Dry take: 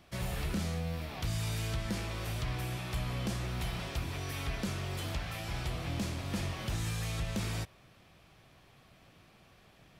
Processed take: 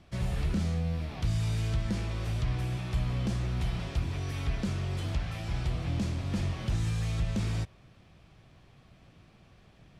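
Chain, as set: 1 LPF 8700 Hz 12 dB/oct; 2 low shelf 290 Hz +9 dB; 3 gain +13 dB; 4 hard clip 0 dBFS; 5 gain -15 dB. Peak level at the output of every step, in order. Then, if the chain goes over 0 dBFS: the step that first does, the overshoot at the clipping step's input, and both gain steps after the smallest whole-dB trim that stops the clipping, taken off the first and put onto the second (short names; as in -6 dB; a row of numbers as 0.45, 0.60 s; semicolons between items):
-24.5, -18.0, -5.0, -5.0, -20.0 dBFS; no overload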